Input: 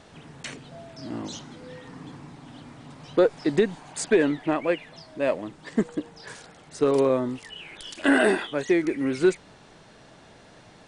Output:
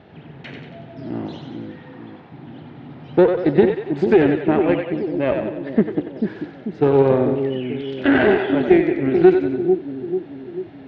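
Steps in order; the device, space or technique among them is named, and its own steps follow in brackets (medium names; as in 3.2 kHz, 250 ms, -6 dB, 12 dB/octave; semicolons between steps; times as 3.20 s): 1.53–2.32 s: high-pass 470 Hz 24 dB/octave; two-band feedback delay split 410 Hz, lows 441 ms, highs 93 ms, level -4.5 dB; guitar amplifier (valve stage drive 14 dB, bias 0.7; tone controls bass +7 dB, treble -10 dB; cabinet simulation 91–3900 Hz, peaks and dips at 370 Hz +6 dB, 770 Hz +3 dB, 1.1 kHz -6 dB); trim +5.5 dB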